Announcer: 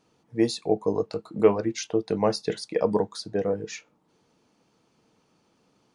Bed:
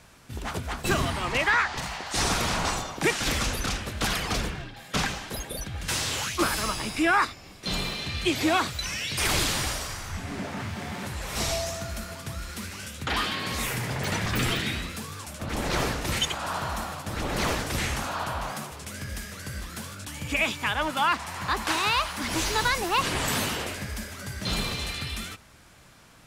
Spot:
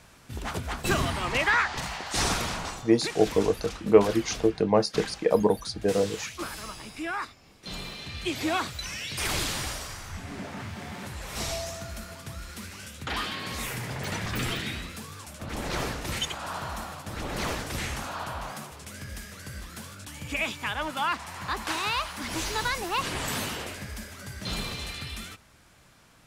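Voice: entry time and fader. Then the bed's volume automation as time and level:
2.50 s, +1.5 dB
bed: 2.27 s -0.5 dB
2.82 s -10.5 dB
7.34 s -10.5 dB
8.53 s -4 dB

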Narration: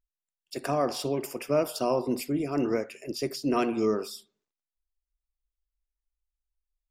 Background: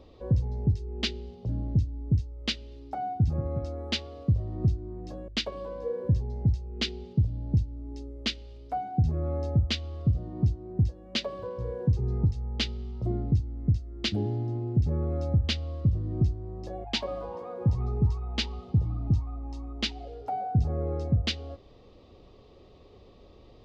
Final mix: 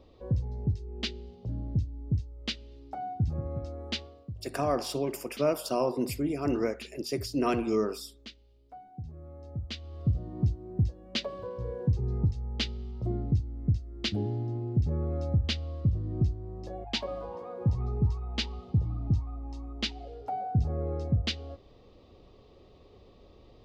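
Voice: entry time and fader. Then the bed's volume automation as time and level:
3.90 s, -1.5 dB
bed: 4.02 s -4 dB
4.31 s -16.5 dB
9.38 s -16.5 dB
10.10 s -2 dB

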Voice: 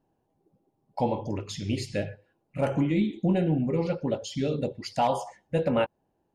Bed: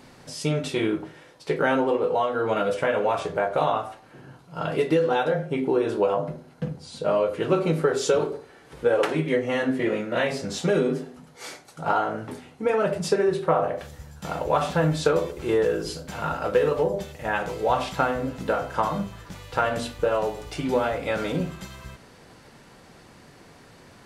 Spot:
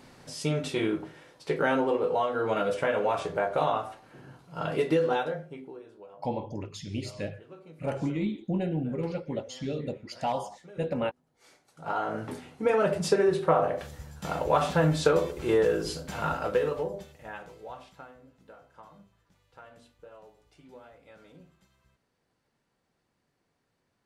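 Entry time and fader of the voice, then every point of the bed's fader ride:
5.25 s, -5.0 dB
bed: 5.13 s -3.5 dB
5.91 s -27 dB
11.24 s -27 dB
12.18 s -1.5 dB
16.30 s -1.5 dB
18.22 s -27 dB

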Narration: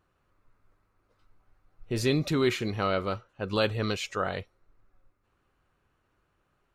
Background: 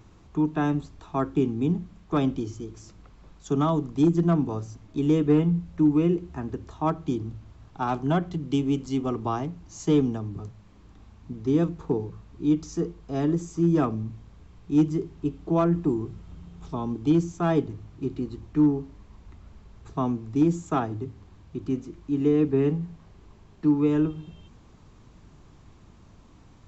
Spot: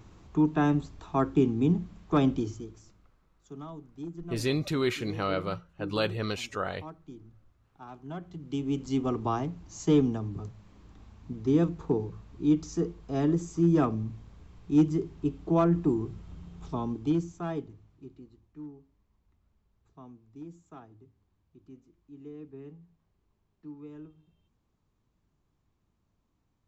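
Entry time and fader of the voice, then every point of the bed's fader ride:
2.40 s, -2.5 dB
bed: 2.44 s 0 dB
3.25 s -19 dB
7.95 s -19 dB
8.91 s -1.5 dB
16.77 s -1.5 dB
18.51 s -23 dB

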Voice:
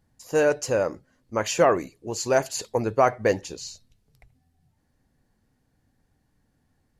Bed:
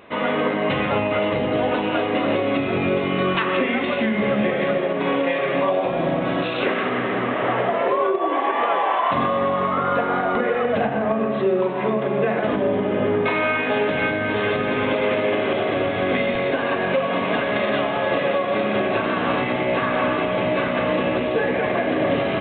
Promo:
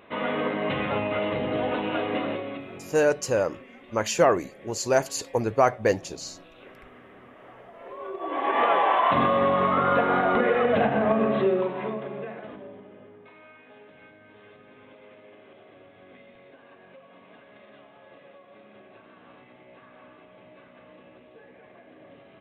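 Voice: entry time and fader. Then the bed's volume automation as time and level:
2.60 s, -0.5 dB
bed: 2.17 s -6 dB
3.08 s -27 dB
7.71 s -27 dB
8.58 s -1 dB
11.37 s -1 dB
13.13 s -30 dB

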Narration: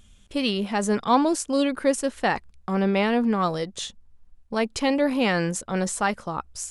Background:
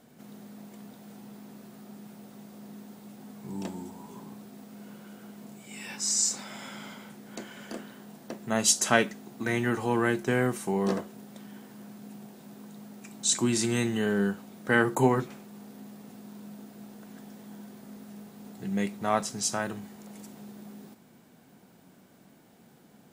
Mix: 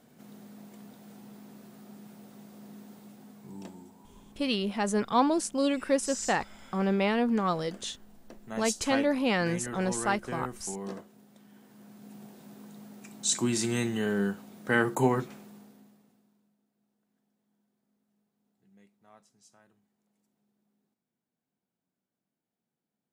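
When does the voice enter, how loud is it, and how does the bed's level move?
4.05 s, -4.5 dB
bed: 2.98 s -2.5 dB
3.97 s -11 dB
11.44 s -11 dB
12.23 s -2 dB
15.47 s -2 dB
16.59 s -31.5 dB

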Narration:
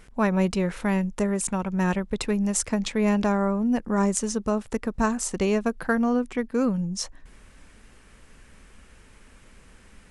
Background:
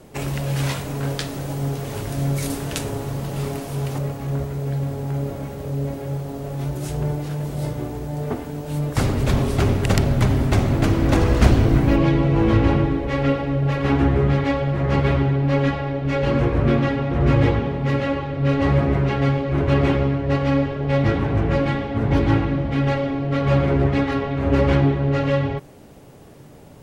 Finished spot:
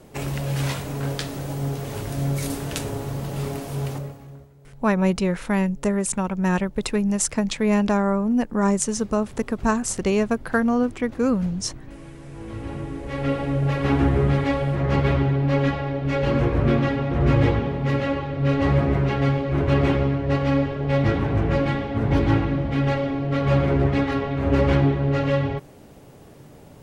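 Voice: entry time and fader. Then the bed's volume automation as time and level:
4.65 s, +2.5 dB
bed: 3.89 s -2 dB
4.54 s -25 dB
12.13 s -25 dB
13.44 s -1.5 dB

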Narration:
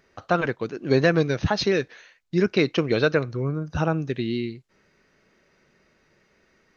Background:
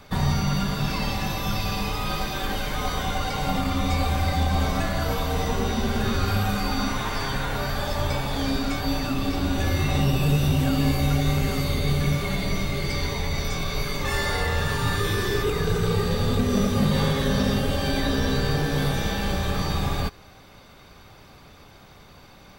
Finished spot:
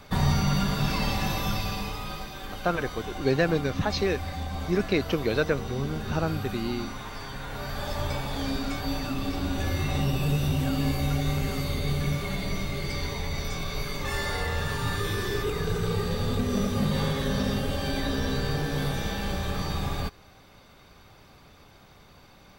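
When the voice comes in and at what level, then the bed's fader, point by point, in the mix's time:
2.35 s, -4.5 dB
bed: 1.38 s -0.5 dB
2.32 s -10.5 dB
7.35 s -10.5 dB
7.90 s -4.5 dB

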